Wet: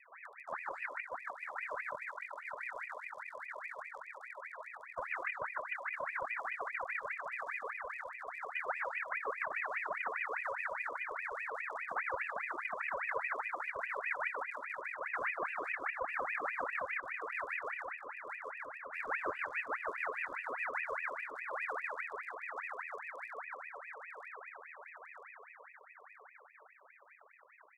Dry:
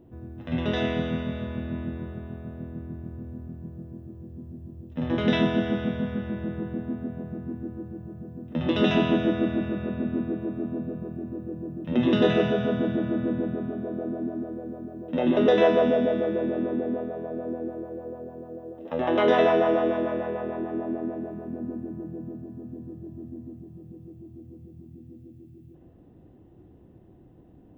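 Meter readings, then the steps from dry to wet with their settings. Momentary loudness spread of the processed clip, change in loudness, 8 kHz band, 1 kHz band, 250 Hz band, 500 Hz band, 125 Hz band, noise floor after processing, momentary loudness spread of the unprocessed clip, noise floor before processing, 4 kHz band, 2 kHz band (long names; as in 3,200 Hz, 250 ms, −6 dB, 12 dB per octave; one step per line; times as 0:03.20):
11 LU, −12.5 dB, can't be measured, −5.0 dB, −36.0 dB, −19.0 dB, below −35 dB, −60 dBFS, 20 LU, −52 dBFS, below −20 dB, +1.0 dB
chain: loose part that buzzes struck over −36 dBFS, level −21 dBFS
inverse Chebyshev band-stop filter 610–3,700 Hz, stop band 40 dB
parametric band 190 Hz +10.5 dB 1.3 octaves
reverb reduction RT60 1.2 s
mains-hum notches 50/100/150/200/250 Hz
downward compressor 6 to 1, threshold −23 dBFS, peak gain reduction 12 dB
pitch vibrato 8.5 Hz 20 cents
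formant filter a
high-shelf EQ 4,700 Hz +9.5 dB
repeating echo 950 ms, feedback 43%, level −4 dB
ring modulator whose carrier an LFO sweeps 1,500 Hz, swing 50%, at 4.9 Hz
level +13.5 dB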